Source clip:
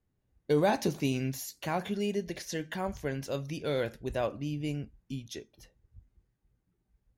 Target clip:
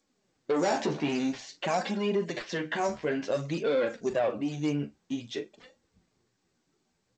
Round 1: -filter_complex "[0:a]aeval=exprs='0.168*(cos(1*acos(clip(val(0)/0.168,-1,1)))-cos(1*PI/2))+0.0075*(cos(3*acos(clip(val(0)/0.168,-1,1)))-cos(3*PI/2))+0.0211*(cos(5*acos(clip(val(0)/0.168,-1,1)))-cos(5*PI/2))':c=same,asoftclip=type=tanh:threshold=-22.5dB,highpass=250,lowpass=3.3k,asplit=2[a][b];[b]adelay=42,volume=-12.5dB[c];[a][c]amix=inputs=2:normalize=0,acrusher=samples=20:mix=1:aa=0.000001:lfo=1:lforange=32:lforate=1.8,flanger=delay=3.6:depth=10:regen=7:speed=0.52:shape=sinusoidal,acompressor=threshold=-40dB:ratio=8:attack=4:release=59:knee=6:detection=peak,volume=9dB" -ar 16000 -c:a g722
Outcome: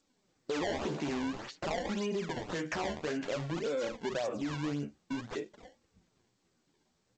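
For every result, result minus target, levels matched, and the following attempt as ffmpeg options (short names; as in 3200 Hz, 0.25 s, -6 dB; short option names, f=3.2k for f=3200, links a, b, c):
decimation with a swept rate: distortion +13 dB; compressor: peak gain reduction +8.5 dB
-filter_complex "[0:a]aeval=exprs='0.168*(cos(1*acos(clip(val(0)/0.168,-1,1)))-cos(1*PI/2))+0.0075*(cos(3*acos(clip(val(0)/0.168,-1,1)))-cos(3*PI/2))+0.0211*(cos(5*acos(clip(val(0)/0.168,-1,1)))-cos(5*PI/2))':c=same,asoftclip=type=tanh:threshold=-22.5dB,highpass=250,lowpass=3.3k,asplit=2[a][b];[b]adelay=42,volume=-12.5dB[c];[a][c]amix=inputs=2:normalize=0,acrusher=samples=4:mix=1:aa=0.000001:lfo=1:lforange=6.4:lforate=1.8,flanger=delay=3.6:depth=10:regen=7:speed=0.52:shape=sinusoidal,acompressor=threshold=-40dB:ratio=8:attack=4:release=59:knee=6:detection=peak,volume=9dB" -ar 16000 -c:a g722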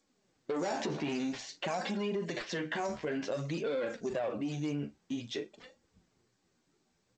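compressor: peak gain reduction +8 dB
-filter_complex "[0:a]aeval=exprs='0.168*(cos(1*acos(clip(val(0)/0.168,-1,1)))-cos(1*PI/2))+0.0075*(cos(3*acos(clip(val(0)/0.168,-1,1)))-cos(3*PI/2))+0.0211*(cos(5*acos(clip(val(0)/0.168,-1,1)))-cos(5*PI/2))':c=same,asoftclip=type=tanh:threshold=-22.5dB,highpass=250,lowpass=3.3k,asplit=2[a][b];[b]adelay=42,volume=-12.5dB[c];[a][c]amix=inputs=2:normalize=0,acrusher=samples=4:mix=1:aa=0.000001:lfo=1:lforange=6.4:lforate=1.8,flanger=delay=3.6:depth=10:regen=7:speed=0.52:shape=sinusoidal,acompressor=threshold=-30.5dB:ratio=8:attack=4:release=59:knee=6:detection=peak,volume=9dB" -ar 16000 -c:a g722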